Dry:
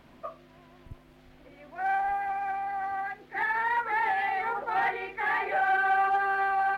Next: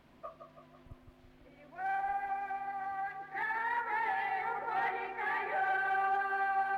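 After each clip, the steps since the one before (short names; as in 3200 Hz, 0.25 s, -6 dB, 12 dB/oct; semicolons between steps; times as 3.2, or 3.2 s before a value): dark delay 0.165 s, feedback 54%, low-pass 1800 Hz, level -7 dB; gain -7 dB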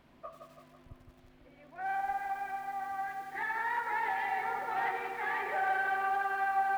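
lo-fi delay 91 ms, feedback 80%, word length 9-bit, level -10.5 dB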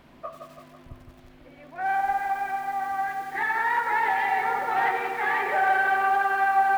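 notches 50/100 Hz; gain +9 dB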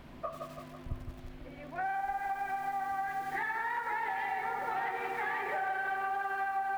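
compressor 5:1, threshold -33 dBFS, peak gain reduction 14.5 dB; low shelf 140 Hz +8 dB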